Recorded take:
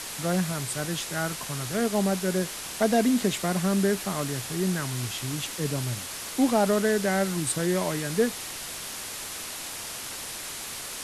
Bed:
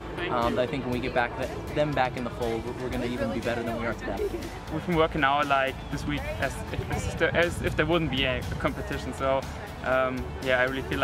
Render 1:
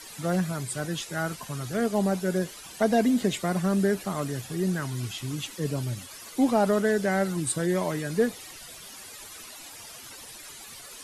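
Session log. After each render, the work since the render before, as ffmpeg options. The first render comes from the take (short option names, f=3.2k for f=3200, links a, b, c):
-af "afftdn=nr=13:nf=-37"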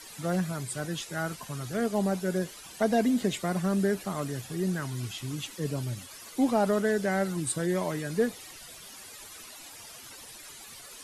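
-af "volume=-2.5dB"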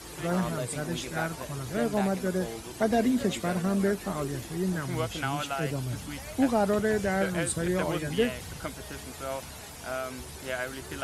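-filter_complex "[1:a]volume=-9.5dB[a];[0:a][a]amix=inputs=2:normalize=0"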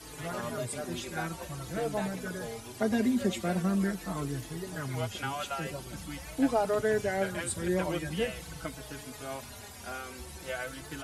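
-filter_complex "[0:a]asplit=2[a][b];[b]adelay=4.2,afreqshift=-0.45[c];[a][c]amix=inputs=2:normalize=1"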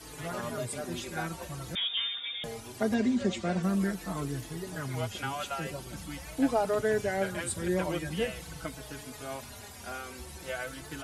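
-filter_complex "[0:a]asettb=1/sr,asplit=3[a][b][c];[a]atrim=end=1.754[d];[b]atrim=start=1.75:end=2.44,asetpts=PTS-STARTPTS,afade=t=in:d=0.004:c=qsin,afade=t=out:st=0.686:d=0.004:c=qsin,lowpass=f=3.2k:t=q:w=0.5098,lowpass=f=3.2k:t=q:w=0.6013,lowpass=f=3.2k:t=q:w=0.9,lowpass=f=3.2k:t=q:w=2.563,afreqshift=-3800[e];[c]atrim=start=2.436[f];[d][e]acrossfade=d=0.004:c1=hsin:c2=qsin[g];[g][f]acrossfade=d=0.004:c1=qsin:c2=hsin,asettb=1/sr,asplit=3[h][i][j];[h]atrim=end=2.944[k];[i]atrim=start=2.94:end=3.63,asetpts=PTS-STARTPTS,afade=t=in:d=0.004:c=qsin,afade=t=out:st=0.686:d=0.004:c=qsin,lowpass=f=7.5k:w=0.5412,lowpass=f=7.5k:w=1.3066[l];[j]atrim=start=3.626[m];[k][l]acrossfade=d=0.004:c1=hsin:c2=qsin[n];[n][m]acrossfade=d=0.004:c1=qsin:c2=hsin"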